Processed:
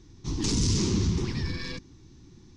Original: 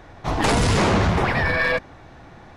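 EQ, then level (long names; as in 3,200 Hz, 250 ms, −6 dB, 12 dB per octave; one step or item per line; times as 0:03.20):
drawn EQ curve 360 Hz 0 dB, 640 Hz −30 dB, 990 Hz −15 dB, 1,500 Hz −20 dB, 3,200 Hz −6 dB, 6,000 Hz +9 dB, 12,000 Hz −16 dB
−5.0 dB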